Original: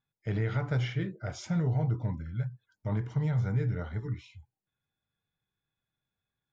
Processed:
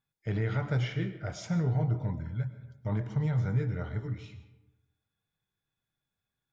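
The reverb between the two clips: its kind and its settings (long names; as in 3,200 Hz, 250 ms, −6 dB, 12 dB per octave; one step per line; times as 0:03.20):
comb and all-pass reverb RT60 1 s, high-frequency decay 0.55×, pre-delay 75 ms, DRR 11.5 dB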